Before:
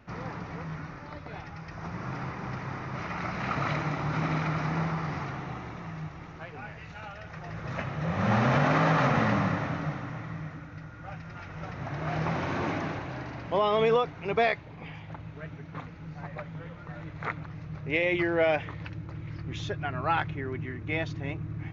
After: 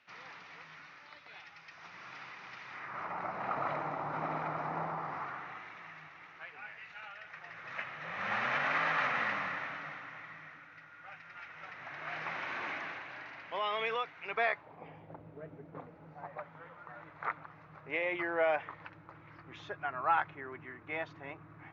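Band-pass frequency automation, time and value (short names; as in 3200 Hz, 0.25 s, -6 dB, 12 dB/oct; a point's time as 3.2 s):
band-pass, Q 1.3
2.68 s 3100 Hz
3.12 s 810 Hz
4.98 s 810 Hz
5.66 s 2100 Hz
14.25 s 2100 Hz
14.99 s 470 Hz
15.74 s 470 Hz
16.56 s 1100 Hz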